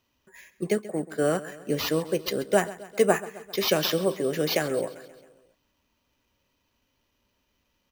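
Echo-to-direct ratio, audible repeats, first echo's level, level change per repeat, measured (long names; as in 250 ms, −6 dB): −15.0 dB, 4, −17.0 dB, −4.5 dB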